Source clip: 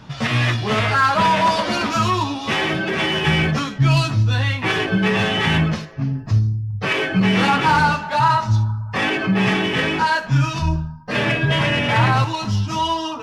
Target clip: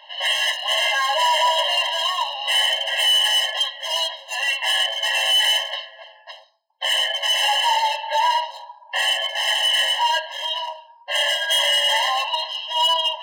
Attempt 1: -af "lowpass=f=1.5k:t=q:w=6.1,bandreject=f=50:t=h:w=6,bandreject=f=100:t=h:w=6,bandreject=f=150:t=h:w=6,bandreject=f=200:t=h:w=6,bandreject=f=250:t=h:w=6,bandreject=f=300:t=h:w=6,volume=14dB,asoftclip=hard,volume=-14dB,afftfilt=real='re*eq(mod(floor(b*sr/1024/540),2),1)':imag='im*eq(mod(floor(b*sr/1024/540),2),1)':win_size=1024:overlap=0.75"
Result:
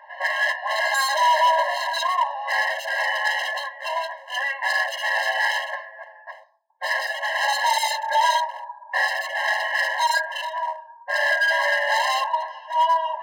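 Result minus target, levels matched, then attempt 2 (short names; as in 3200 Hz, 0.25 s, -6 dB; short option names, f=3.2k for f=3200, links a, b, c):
4000 Hz band -9.5 dB
-af "lowpass=f=3.2k:t=q:w=6.1,bandreject=f=50:t=h:w=6,bandreject=f=100:t=h:w=6,bandreject=f=150:t=h:w=6,bandreject=f=200:t=h:w=6,bandreject=f=250:t=h:w=6,bandreject=f=300:t=h:w=6,volume=14dB,asoftclip=hard,volume=-14dB,afftfilt=real='re*eq(mod(floor(b*sr/1024/540),2),1)':imag='im*eq(mod(floor(b*sr/1024/540),2),1)':win_size=1024:overlap=0.75"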